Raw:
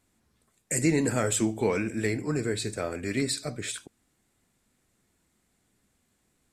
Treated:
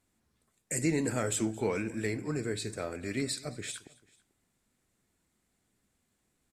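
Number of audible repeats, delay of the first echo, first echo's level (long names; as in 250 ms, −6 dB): 2, 220 ms, −22.0 dB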